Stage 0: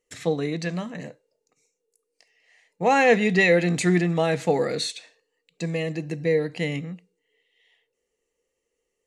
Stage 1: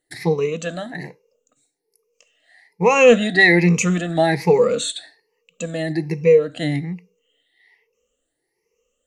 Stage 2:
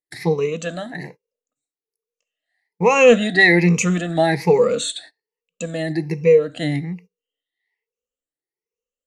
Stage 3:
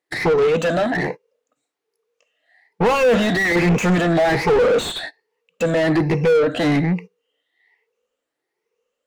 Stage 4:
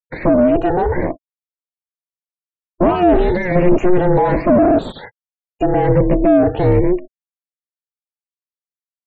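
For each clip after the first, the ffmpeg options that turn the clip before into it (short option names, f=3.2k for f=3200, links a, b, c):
-af "afftfilt=real='re*pow(10,19/40*sin(2*PI*(0.81*log(max(b,1)*sr/1024/100)/log(2)-(1.2)*(pts-256)/sr)))':imag='im*pow(10,19/40*sin(2*PI*(0.81*log(max(b,1)*sr/1024/100)/log(2)-(1.2)*(pts-256)/sr)))':win_size=1024:overlap=0.75,volume=1.5dB"
-af "agate=range=-21dB:threshold=-40dB:ratio=16:detection=peak"
-filter_complex "[0:a]asplit=2[a][b];[b]highpass=f=720:p=1,volume=36dB,asoftclip=type=tanh:threshold=-1dB[c];[a][c]amix=inputs=2:normalize=0,lowpass=f=1k:p=1,volume=-6dB,volume=-6.5dB"
-af "tiltshelf=f=1.2k:g=9.5,afftfilt=real='re*gte(hypot(re,im),0.0282)':imag='im*gte(hypot(re,im),0.0282)':win_size=1024:overlap=0.75,aeval=exprs='val(0)*sin(2*PI*180*n/s)':c=same"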